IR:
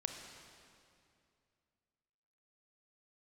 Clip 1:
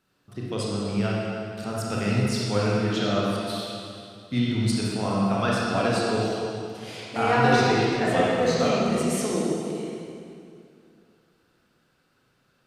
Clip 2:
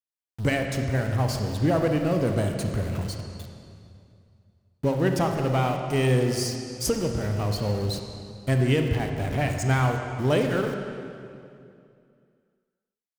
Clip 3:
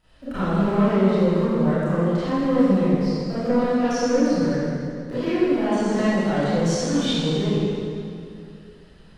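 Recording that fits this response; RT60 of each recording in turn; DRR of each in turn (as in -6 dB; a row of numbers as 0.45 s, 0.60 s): 2; 2.5 s, 2.5 s, 2.5 s; -5.5 dB, 4.0 dB, -15.5 dB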